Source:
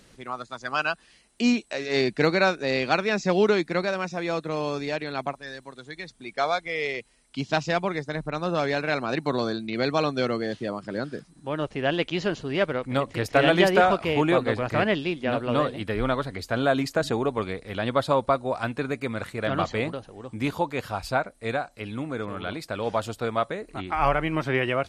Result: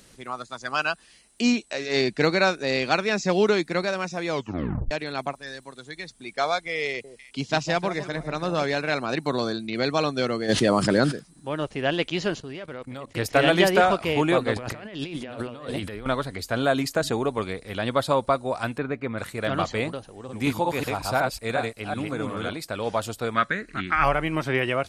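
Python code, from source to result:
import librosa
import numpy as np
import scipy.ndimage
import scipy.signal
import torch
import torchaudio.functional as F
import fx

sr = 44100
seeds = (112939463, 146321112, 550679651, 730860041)

y = fx.lowpass(x, sr, hz=8900.0, slope=12, at=(1.47, 2.32))
y = fx.echo_alternate(y, sr, ms=151, hz=1000.0, feedback_pct=53, wet_db=-10.5, at=(6.89, 8.64))
y = fx.env_flatten(y, sr, amount_pct=70, at=(10.48, 11.11), fade=0.02)
y = fx.level_steps(y, sr, step_db=18, at=(12.4, 13.16))
y = fx.over_compress(y, sr, threshold_db=-35.0, ratio=-1.0, at=(14.56, 16.06))
y = fx.lowpass(y, sr, hz=2200.0, slope=12, at=(18.78, 19.18))
y = fx.reverse_delay(y, sr, ms=184, wet_db=-1.5, at=(20.1, 22.49))
y = fx.curve_eq(y, sr, hz=(110.0, 200.0, 450.0, 850.0, 1600.0, 2700.0, 6400.0, 11000.0), db=(0, 6, -4, -7, 14, 3, 0, -12), at=(23.34, 24.04))
y = fx.edit(y, sr, fx.tape_stop(start_s=4.29, length_s=0.62), tone=tone)
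y = fx.high_shelf(y, sr, hz=6300.0, db=9.5)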